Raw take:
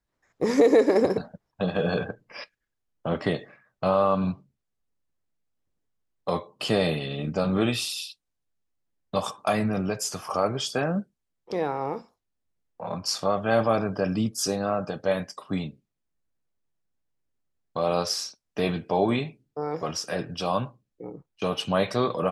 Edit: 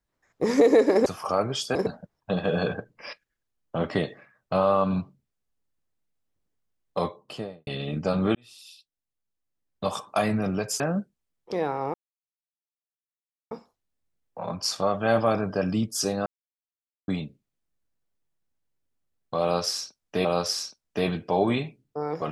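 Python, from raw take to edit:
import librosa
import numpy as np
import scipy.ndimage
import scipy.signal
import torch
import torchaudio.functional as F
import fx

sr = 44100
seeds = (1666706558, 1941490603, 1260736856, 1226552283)

y = fx.studio_fade_out(x, sr, start_s=6.32, length_s=0.66)
y = fx.edit(y, sr, fx.fade_in_span(start_s=7.66, length_s=1.78),
    fx.move(start_s=10.11, length_s=0.69, to_s=1.06),
    fx.insert_silence(at_s=11.94, length_s=1.57),
    fx.silence(start_s=14.69, length_s=0.82),
    fx.repeat(start_s=17.86, length_s=0.82, count=2), tone=tone)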